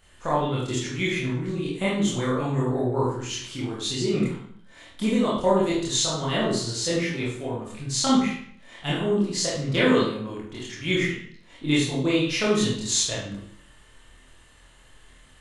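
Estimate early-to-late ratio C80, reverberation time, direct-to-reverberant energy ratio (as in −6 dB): 6.0 dB, 0.60 s, −8.0 dB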